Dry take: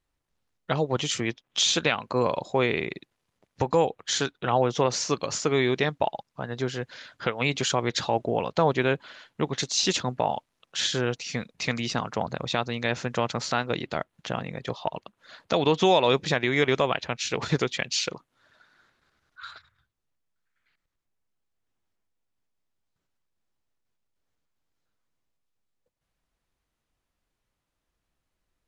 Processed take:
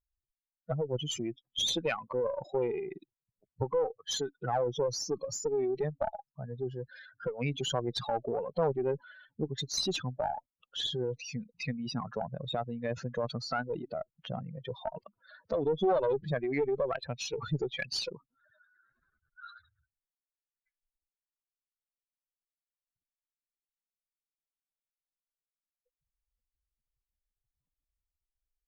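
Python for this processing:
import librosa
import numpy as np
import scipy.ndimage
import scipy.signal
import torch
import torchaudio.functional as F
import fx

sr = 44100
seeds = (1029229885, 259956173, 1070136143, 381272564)

y = fx.spec_expand(x, sr, power=3.2)
y = fx.cheby_harmonics(y, sr, harmonics=(2, 5, 8), levels_db=(-11, -33, -43), full_scale_db=-11.5)
y = y * librosa.db_to_amplitude(-7.0)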